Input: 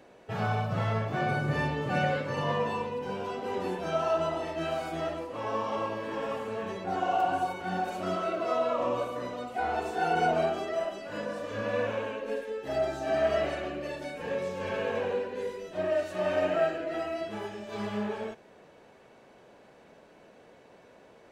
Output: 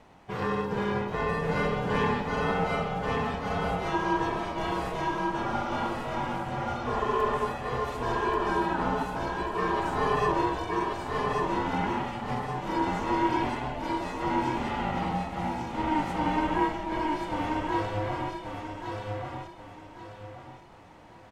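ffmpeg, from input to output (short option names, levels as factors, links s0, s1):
-af "aeval=exprs='val(0)*sin(2*PI*310*n/s)':c=same,aecho=1:1:1133|2266|3399|4532:0.708|0.241|0.0818|0.0278,volume=1.41"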